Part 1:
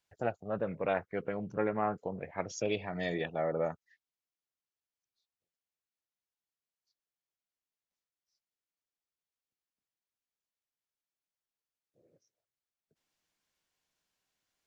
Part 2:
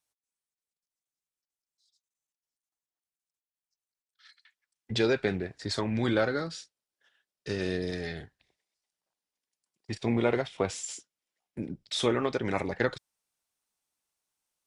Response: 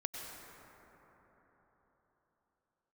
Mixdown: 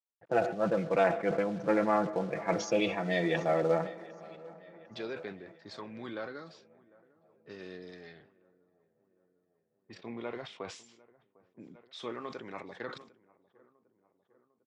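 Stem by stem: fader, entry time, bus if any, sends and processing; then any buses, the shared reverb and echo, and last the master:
+2.5 dB, 0.10 s, send -15 dB, echo send -21 dB, comb 6 ms, depth 60%; companded quantiser 6-bit
-13.5 dB, 0.00 s, no send, echo send -23.5 dB, bell 1100 Hz +7 dB 0.28 oct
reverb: on, RT60 4.4 s, pre-delay 88 ms
echo: feedback echo 0.751 s, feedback 57%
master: low-pass opened by the level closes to 880 Hz, open at -41.5 dBFS; BPF 180–5000 Hz; sustainer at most 95 dB/s

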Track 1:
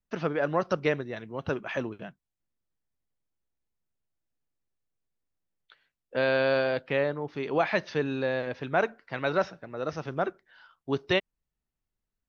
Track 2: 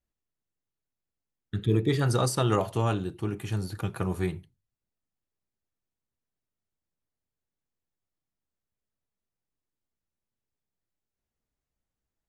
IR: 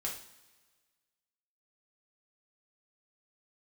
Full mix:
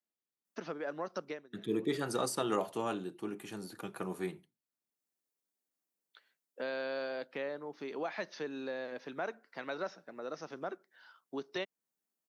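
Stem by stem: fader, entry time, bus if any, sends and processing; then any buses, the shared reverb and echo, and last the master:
-4.0 dB, 0.45 s, no send, bell 2800 Hz -4.5 dB 0.85 oct; compressor 2:1, threshold -37 dBFS, peak gain reduction 9.5 dB; auto duck -18 dB, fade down 0.25 s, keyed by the second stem
-6.0 dB, 0.00 s, no send, high shelf 3900 Hz -9.5 dB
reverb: off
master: HPF 200 Hz 24 dB/oct; high shelf 5300 Hz +11 dB

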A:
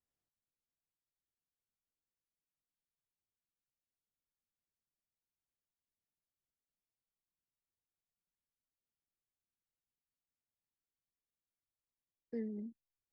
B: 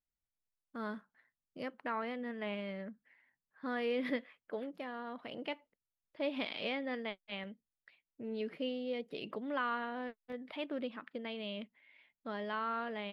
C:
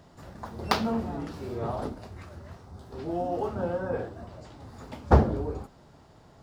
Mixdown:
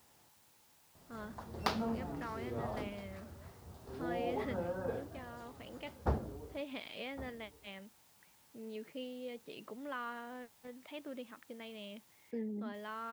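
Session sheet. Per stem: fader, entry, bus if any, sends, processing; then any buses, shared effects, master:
-0.5 dB, 0.00 s, no send, echo send -11 dB, HPF 75 Hz 12 dB/oct; bell 880 Hz +9.5 dB 0.35 oct; fast leveller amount 50%
-6.5 dB, 0.35 s, no send, no echo send, dry
-8.5 dB, 0.95 s, no send, echo send -23 dB, auto duck -14 dB, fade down 2.00 s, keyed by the first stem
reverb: off
echo: echo 1.111 s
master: dry

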